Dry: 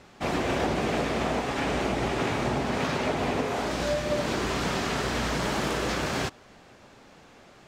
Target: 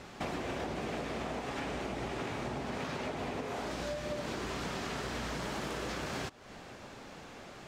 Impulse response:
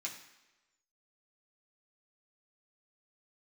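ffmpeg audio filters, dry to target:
-af "acompressor=threshold=0.01:ratio=5,volume=1.5"

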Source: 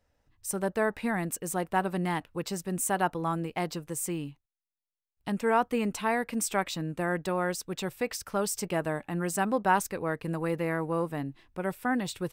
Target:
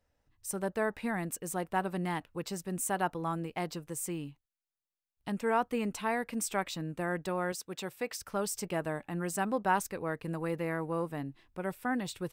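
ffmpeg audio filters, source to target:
-filter_complex "[0:a]asettb=1/sr,asplit=3[s0][s1][s2];[s0]atrim=end=7.524[s3];[s1]atrim=start=7.52:end=8.2,asetpts=PTS-STARTPTS,afade=t=in:d=0.004:c=qsin,afade=t=out:st=0.676:d=0.004:c=qsin,highpass=f=220:p=1[s4];[s2]atrim=start=8.196[s5];[s3][s4]acrossfade=d=0.004:c1=hsin:c2=qsin[s6];[s6][s5]acrossfade=d=0.004:c1=qsin:c2=hsin,volume=0.631"

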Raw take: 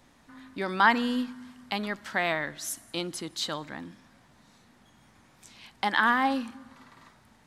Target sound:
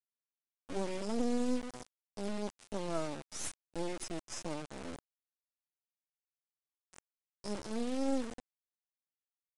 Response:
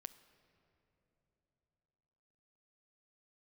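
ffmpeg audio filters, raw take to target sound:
-af "afftfilt=real='re*(1-between(b*sr/4096,680,4900))':imag='im*(1-between(b*sr/4096,680,4900))':win_size=4096:overlap=0.75,highpass=130,acrusher=bits=4:dc=4:mix=0:aa=0.000001,atempo=0.78,aresample=22050,aresample=44100"

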